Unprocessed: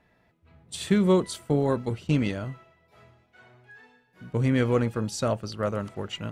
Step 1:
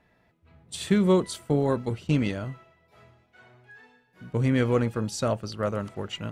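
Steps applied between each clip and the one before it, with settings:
no processing that can be heard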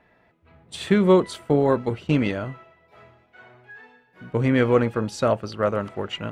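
bass and treble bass −6 dB, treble −11 dB
level +6.5 dB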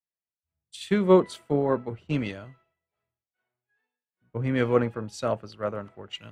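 multiband upward and downward expander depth 100%
level −7 dB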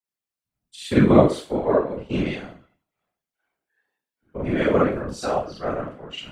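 frequency shifter +28 Hz
four-comb reverb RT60 0.36 s, combs from 30 ms, DRR −5 dB
random phases in short frames
level −2 dB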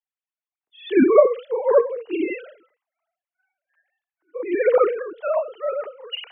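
three sine waves on the formant tracks
level +1 dB

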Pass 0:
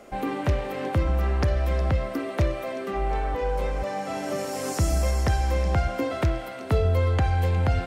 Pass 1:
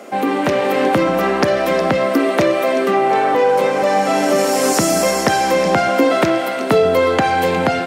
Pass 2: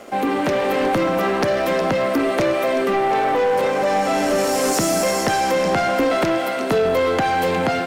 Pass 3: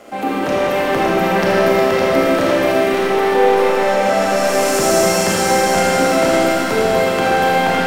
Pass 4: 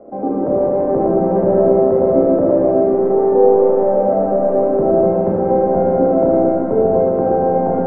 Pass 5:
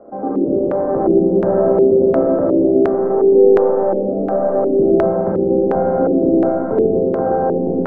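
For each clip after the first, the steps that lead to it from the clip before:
high-pass filter 190 Hz 24 dB per octave; in parallel at −0.5 dB: brickwall limiter −23.5 dBFS, peak gain reduction 8 dB; on the sum: automatic gain control gain up to 4 dB; level +6 dB
leveller curve on the samples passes 2; level −9 dB
on a send: echo with a time of its own for lows and highs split 1,300 Hz, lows 112 ms, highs 560 ms, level −4.5 dB; on the sum: four-comb reverb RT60 2.4 s, combs from 26 ms, DRR −4.5 dB; level −2.5 dB
transistor ladder low-pass 750 Hz, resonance 25%; level +7 dB
auto-filter low-pass square 1.4 Hz 360–1,500 Hz; level −2.5 dB

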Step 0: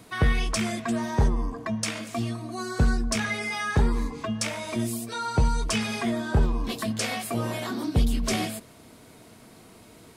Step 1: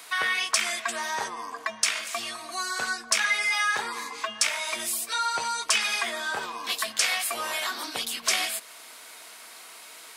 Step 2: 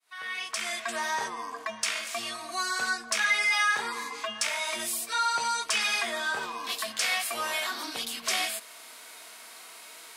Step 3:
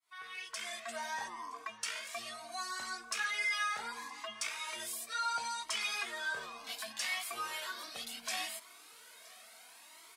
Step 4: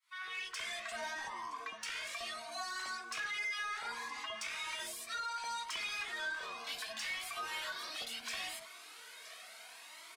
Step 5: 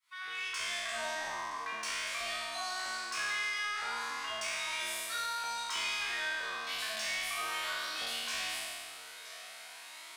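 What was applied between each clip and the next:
high-pass filter 1,200 Hz 12 dB per octave; in parallel at −0.5 dB: downward compressor, threshold −43 dBFS, peak gain reduction 16.5 dB; on the sum: level +5 dB
fade in at the beginning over 0.96 s; harmonic and percussive parts rebalanced percussive −7 dB; harmonic generator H 5 −30 dB, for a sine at −14.5 dBFS
single-tap delay 969 ms −23 dB; flanger whose copies keep moving one way rising 0.7 Hz; level −5 dB
downward compressor 5 to 1, threshold −39 dBFS, peak gain reduction 8 dB; mid-hump overdrive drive 15 dB, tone 3,700 Hz, clips at −26 dBFS; multiband delay without the direct sound highs, lows 60 ms, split 940 Hz; level −2.5 dB
peak hold with a decay on every bin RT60 2.14 s

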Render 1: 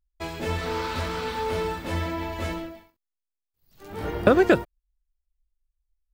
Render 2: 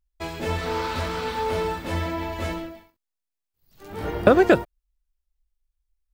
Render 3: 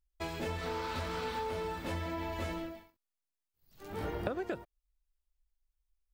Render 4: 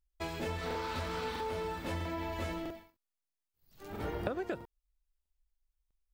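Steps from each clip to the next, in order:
dynamic equaliser 710 Hz, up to +3 dB, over −34 dBFS, Q 1.6; level +1 dB
downward compressor 10 to 1, threshold −28 dBFS, peak gain reduction 17.5 dB; level −5 dB
regular buffer underruns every 0.65 s, samples 2,048, repeat, from 0:00.66

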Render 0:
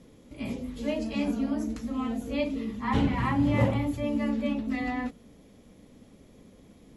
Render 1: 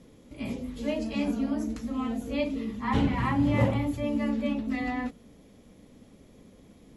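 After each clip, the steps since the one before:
no processing that can be heard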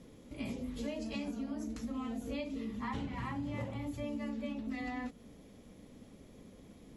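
dynamic equaliser 6,500 Hz, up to +5 dB, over −53 dBFS, Q 0.82
downward compressor 10 to 1, threshold −34 dBFS, peak gain reduction 16.5 dB
level −1.5 dB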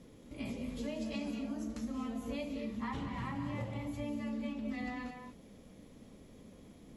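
reverb whose tail is shaped and stops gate 260 ms rising, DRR 6 dB
level −1 dB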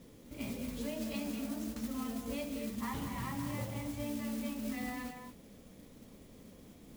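noise that follows the level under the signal 13 dB

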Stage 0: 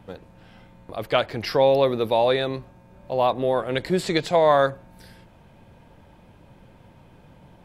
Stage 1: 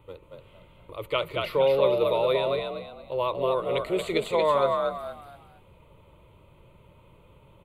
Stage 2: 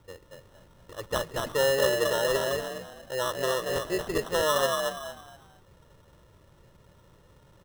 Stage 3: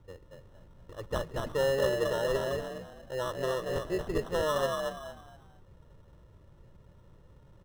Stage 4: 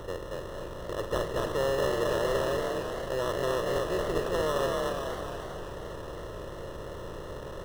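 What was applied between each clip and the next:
phaser with its sweep stopped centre 1,100 Hz, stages 8; on a send: echo with shifted repeats 230 ms, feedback 30%, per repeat +51 Hz, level −3.5 dB; on the sum: level −2.5 dB
decimation without filtering 19×; level −2.5 dB
spectral tilt −2 dB per octave; level −5 dB
compressor on every frequency bin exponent 0.4; feedback echo with a swinging delay time 266 ms, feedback 68%, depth 175 cents, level −12 dB; level −3.5 dB

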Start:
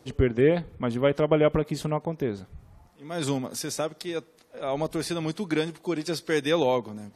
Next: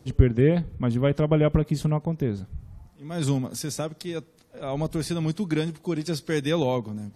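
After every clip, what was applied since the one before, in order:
bass and treble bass +12 dB, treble +3 dB
level −3 dB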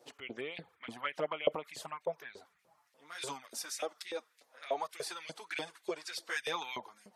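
flanger swept by the level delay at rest 8.8 ms, full sweep at −15.5 dBFS
auto-filter high-pass saw up 3.4 Hz 500–2,600 Hz
level −3.5 dB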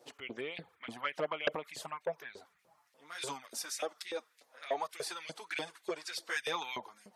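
saturating transformer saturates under 1,600 Hz
level +1 dB

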